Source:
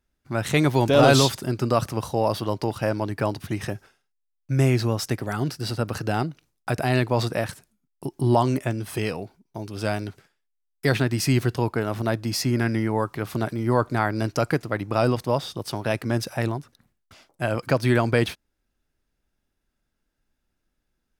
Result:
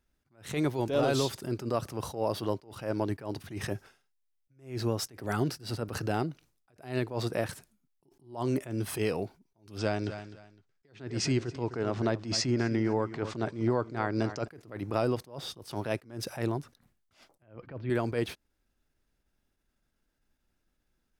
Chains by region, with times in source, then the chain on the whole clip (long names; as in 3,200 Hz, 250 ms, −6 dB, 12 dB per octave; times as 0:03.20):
0:09.78–0:14.48: Butterworth low-pass 7,600 Hz + repeating echo 255 ms, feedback 23%, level −15.5 dB
0:17.42–0:17.90: low-pass filter 3,100 Hz 24 dB per octave + low-shelf EQ 220 Hz +8.5 dB
whole clip: dynamic equaliser 400 Hz, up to +6 dB, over −34 dBFS, Q 1.4; downward compressor 6 to 1, threshold −24 dBFS; level that may rise only so fast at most 150 dB per second